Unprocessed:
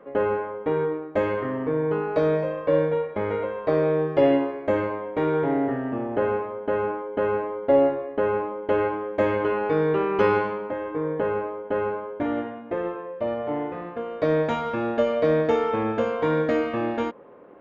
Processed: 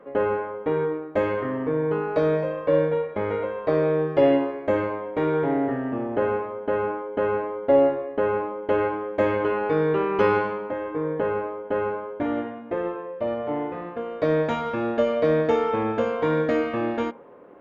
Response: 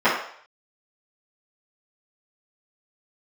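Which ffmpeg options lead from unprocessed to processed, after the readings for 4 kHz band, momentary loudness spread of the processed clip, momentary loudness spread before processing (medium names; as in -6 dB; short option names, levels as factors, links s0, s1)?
no reading, 8 LU, 8 LU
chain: -filter_complex "[0:a]asplit=2[s0][s1];[1:a]atrim=start_sample=2205[s2];[s1][s2]afir=irnorm=-1:irlink=0,volume=0.00944[s3];[s0][s3]amix=inputs=2:normalize=0"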